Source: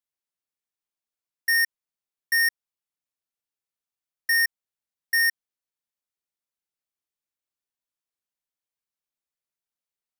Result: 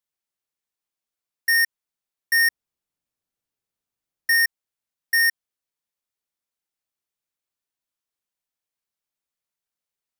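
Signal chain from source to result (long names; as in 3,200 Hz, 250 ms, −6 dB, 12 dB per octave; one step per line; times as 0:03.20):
0:02.35–0:04.36: low-shelf EQ 500 Hz +9 dB
level +2.5 dB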